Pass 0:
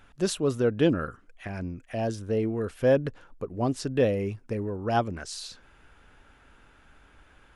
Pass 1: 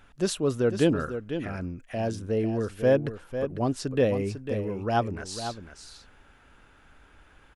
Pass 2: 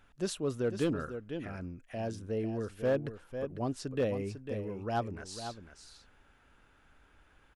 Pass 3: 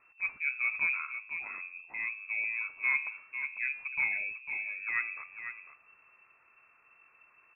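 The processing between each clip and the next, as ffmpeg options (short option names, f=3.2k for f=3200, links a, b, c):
-af "aecho=1:1:499:0.335"
-af "volume=16dB,asoftclip=hard,volume=-16dB,volume=-7.5dB"
-af "bandreject=f=88.79:t=h:w=4,bandreject=f=177.58:t=h:w=4,bandreject=f=266.37:t=h:w=4,bandreject=f=355.16:t=h:w=4,bandreject=f=443.95:t=h:w=4,bandreject=f=532.74:t=h:w=4,bandreject=f=621.53:t=h:w=4,bandreject=f=710.32:t=h:w=4,bandreject=f=799.11:t=h:w=4,bandreject=f=887.9:t=h:w=4,bandreject=f=976.69:t=h:w=4,bandreject=f=1.06548k:t=h:w=4,bandreject=f=1.15427k:t=h:w=4,bandreject=f=1.24306k:t=h:w=4,bandreject=f=1.33185k:t=h:w=4,bandreject=f=1.42064k:t=h:w=4,bandreject=f=1.50943k:t=h:w=4,bandreject=f=1.59822k:t=h:w=4,bandreject=f=1.68701k:t=h:w=4,bandreject=f=1.7758k:t=h:w=4,bandreject=f=1.86459k:t=h:w=4,bandreject=f=1.95338k:t=h:w=4,bandreject=f=2.04217k:t=h:w=4,lowpass=f=2.3k:t=q:w=0.5098,lowpass=f=2.3k:t=q:w=0.6013,lowpass=f=2.3k:t=q:w=0.9,lowpass=f=2.3k:t=q:w=2.563,afreqshift=-2700"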